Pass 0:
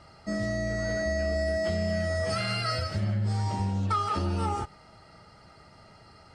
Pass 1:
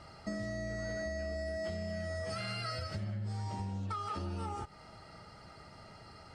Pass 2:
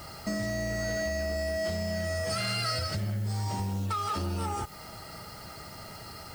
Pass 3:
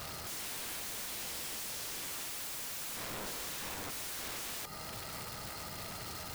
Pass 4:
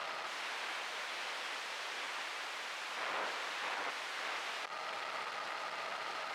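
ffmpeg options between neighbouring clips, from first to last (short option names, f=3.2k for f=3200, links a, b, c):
-af "acompressor=threshold=-36dB:ratio=6"
-af "asoftclip=type=tanh:threshold=-32dB,acrusher=bits=10:mix=0:aa=0.000001,highshelf=f=5.5k:g=10.5,volume=8dB"
-af "aeval=exprs='(mod(75*val(0)+1,2)-1)/75':c=same,volume=1dB"
-af "acrusher=bits=6:mix=0:aa=0.000001,highpass=660,lowpass=2.6k,volume=6.5dB"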